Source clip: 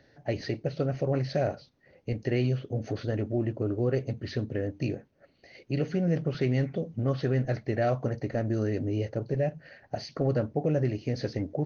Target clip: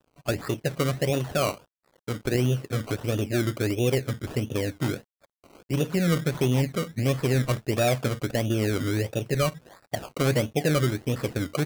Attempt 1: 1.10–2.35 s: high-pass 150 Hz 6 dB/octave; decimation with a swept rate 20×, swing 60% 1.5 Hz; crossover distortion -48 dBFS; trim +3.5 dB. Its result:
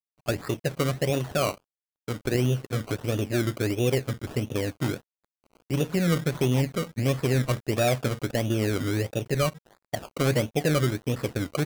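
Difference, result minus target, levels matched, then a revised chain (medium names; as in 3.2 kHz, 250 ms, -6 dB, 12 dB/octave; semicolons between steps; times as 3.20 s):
crossover distortion: distortion +9 dB
1.10–2.35 s: high-pass 150 Hz 6 dB/octave; decimation with a swept rate 20×, swing 60% 1.5 Hz; crossover distortion -58 dBFS; trim +3.5 dB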